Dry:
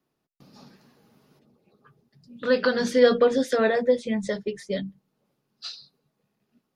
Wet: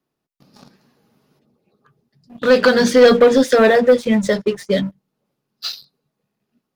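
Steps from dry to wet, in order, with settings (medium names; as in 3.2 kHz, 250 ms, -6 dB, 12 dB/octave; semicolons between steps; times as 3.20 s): waveshaping leveller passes 2; trim +3.5 dB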